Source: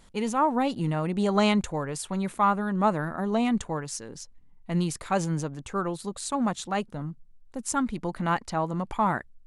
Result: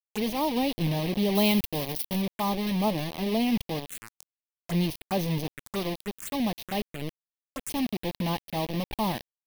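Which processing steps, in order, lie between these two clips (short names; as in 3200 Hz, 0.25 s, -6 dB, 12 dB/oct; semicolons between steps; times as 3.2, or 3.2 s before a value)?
bit-crush 5-bit; 1.35–2.22 high shelf 7700 Hz +11 dB; envelope phaser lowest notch 190 Hz, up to 1400 Hz, full sweep at -27.5 dBFS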